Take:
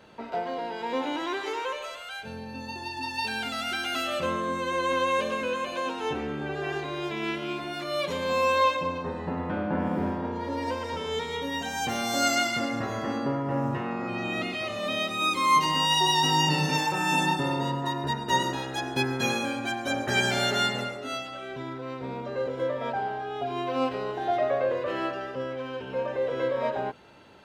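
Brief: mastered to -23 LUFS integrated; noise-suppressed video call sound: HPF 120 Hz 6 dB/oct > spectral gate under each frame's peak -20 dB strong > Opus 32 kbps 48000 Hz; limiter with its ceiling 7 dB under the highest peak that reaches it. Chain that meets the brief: limiter -18.5 dBFS; HPF 120 Hz 6 dB/oct; spectral gate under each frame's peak -20 dB strong; gain +7 dB; Opus 32 kbps 48000 Hz

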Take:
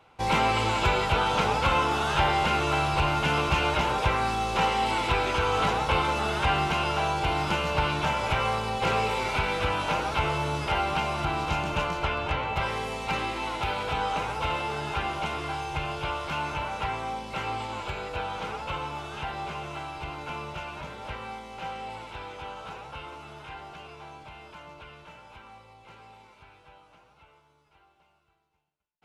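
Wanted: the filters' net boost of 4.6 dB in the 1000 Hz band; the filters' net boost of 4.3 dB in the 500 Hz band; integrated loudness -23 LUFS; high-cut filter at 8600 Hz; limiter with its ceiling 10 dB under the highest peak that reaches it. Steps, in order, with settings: LPF 8600 Hz; bell 500 Hz +4 dB; bell 1000 Hz +4.5 dB; gain +6 dB; limiter -13.5 dBFS

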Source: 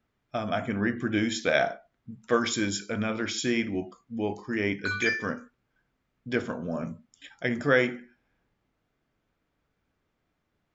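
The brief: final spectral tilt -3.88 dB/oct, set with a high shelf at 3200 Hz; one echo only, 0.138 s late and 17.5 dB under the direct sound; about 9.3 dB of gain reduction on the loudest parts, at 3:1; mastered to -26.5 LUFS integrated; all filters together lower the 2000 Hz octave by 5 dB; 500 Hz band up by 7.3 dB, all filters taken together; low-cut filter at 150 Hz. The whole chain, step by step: HPF 150 Hz; bell 500 Hz +9 dB; bell 2000 Hz -9 dB; high shelf 3200 Hz +5.5 dB; compressor 3:1, threshold -24 dBFS; echo 0.138 s -17.5 dB; gain +3 dB

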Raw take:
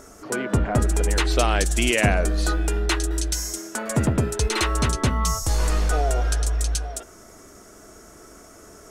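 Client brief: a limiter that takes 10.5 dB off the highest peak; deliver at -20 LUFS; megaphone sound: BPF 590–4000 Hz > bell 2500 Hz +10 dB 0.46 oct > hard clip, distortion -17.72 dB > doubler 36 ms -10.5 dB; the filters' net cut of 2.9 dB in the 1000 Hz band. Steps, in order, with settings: bell 1000 Hz -3.5 dB; limiter -16.5 dBFS; BPF 590–4000 Hz; bell 2500 Hz +10 dB 0.46 oct; hard clip -19.5 dBFS; doubler 36 ms -10.5 dB; gain +11 dB

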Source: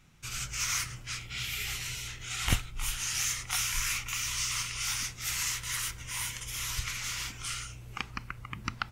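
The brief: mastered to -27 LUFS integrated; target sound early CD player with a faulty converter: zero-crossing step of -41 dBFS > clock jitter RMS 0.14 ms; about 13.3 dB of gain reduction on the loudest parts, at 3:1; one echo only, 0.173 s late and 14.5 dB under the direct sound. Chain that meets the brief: compressor 3:1, threshold -39 dBFS; echo 0.173 s -14.5 dB; zero-crossing step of -41 dBFS; clock jitter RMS 0.14 ms; gain +9.5 dB

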